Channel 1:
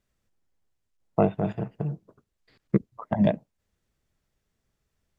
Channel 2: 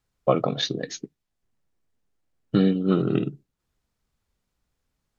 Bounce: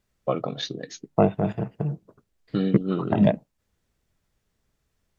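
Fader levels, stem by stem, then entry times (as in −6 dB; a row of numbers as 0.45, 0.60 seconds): +2.5, −5.0 decibels; 0.00, 0.00 seconds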